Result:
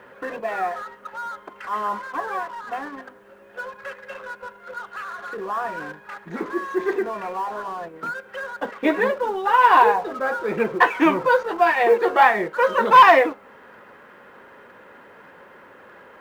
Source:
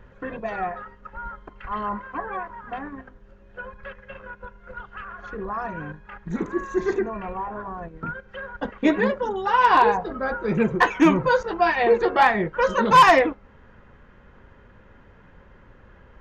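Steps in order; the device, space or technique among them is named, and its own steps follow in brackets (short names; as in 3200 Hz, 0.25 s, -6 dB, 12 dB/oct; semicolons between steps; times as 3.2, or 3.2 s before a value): phone line with mismatched companding (BPF 380–3200 Hz; G.711 law mismatch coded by mu); gain +2.5 dB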